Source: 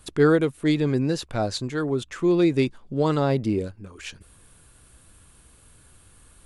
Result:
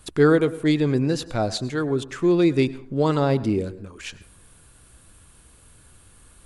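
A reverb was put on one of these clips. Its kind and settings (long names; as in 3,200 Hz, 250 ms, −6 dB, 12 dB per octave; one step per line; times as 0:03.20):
dense smooth reverb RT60 0.58 s, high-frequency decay 0.45×, pre-delay 90 ms, DRR 16.5 dB
level +1.5 dB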